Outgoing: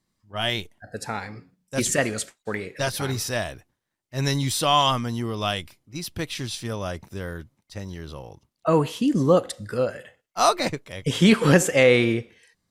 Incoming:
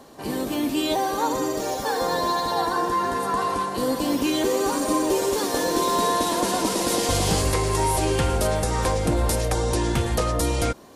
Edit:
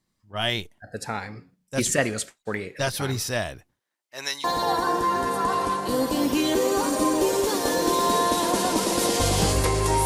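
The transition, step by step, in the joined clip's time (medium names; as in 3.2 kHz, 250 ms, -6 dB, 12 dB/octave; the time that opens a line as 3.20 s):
outgoing
3.79–4.44 s: high-pass 290 Hz -> 1.2 kHz
4.44 s: go over to incoming from 2.33 s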